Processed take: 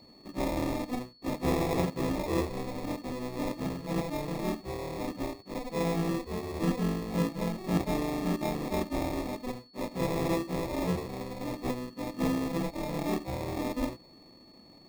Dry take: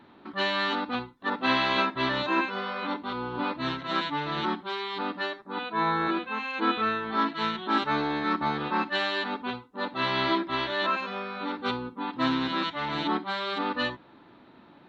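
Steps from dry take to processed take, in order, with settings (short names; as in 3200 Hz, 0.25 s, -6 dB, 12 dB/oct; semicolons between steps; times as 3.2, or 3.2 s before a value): sample-rate reducer 1500 Hz, jitter 0%; whine 4400 Hz -49 dBFS; tilt shelf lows +3.5 dB, about 870 Hz; gain -5 dB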